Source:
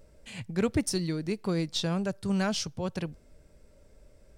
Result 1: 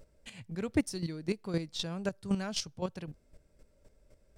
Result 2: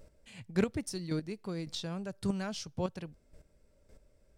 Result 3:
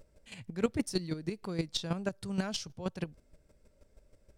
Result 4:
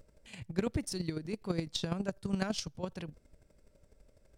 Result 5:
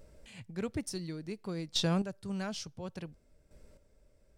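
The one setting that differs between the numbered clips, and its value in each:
square-wave tremolo, speed: 3.9, 1.8, 6.3, 12, 0.57 Hertz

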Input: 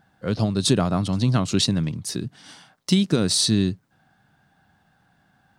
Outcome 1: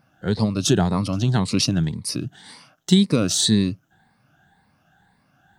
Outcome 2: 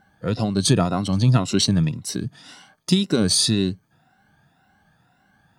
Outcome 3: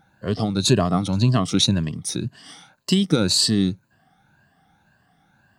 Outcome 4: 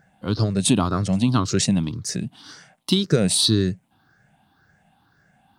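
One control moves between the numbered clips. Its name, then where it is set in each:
rippled gain that drifts along the octave scale, ripples per octave: 0.93, 2.1, 1.4, 0.54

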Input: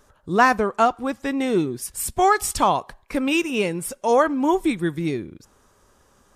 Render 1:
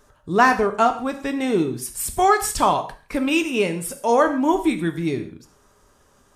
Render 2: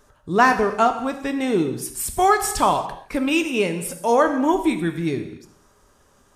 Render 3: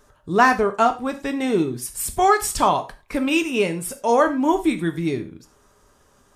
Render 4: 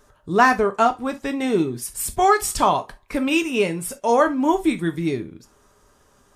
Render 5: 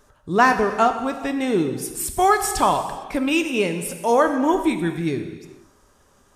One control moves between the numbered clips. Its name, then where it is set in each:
reverb whose tail is shaped and stops, gate: 190, 310, 130, 90, 490 milliseconds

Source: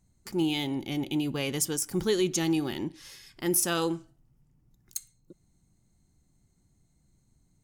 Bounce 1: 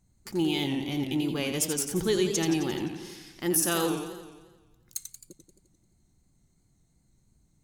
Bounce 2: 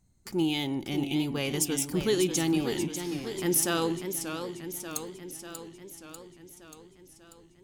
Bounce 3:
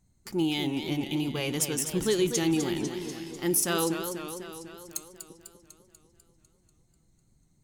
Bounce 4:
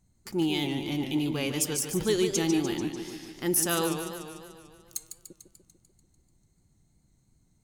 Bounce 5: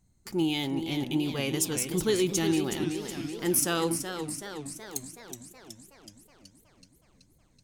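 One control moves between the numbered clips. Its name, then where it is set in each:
feedback echo with a swinging delay time, delay time: 87, 589, 247, 147, 373 milliseconds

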